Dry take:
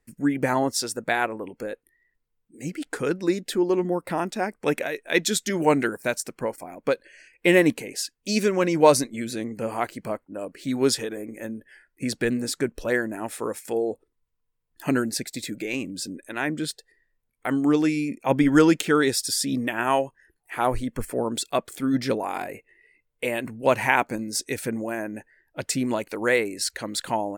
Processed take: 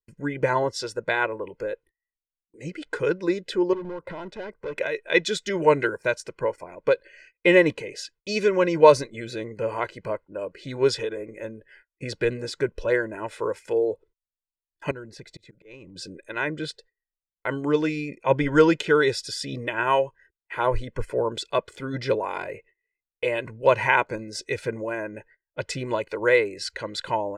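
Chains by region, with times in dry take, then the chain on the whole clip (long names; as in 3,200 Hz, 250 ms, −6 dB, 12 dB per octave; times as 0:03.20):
0:03.73–0:04.78: high-shelf EQ 2,600 Hz −11 dB + downward compressor 5 to 1, threshold −26 dBFS + hard clipping −30 dBFS
0:14.91–0:15.96: spectral tilt −1.5 dB per octave + volume swells 515 ms + downward compressor 3 to 1, threshold −38 dBFS
whole clip: low-pass filter 4,300 Hz 12 dB per octave; noise gate −52 dBFS, range −26 dB; comb filter 2 ms, depth 73%; level −1 dB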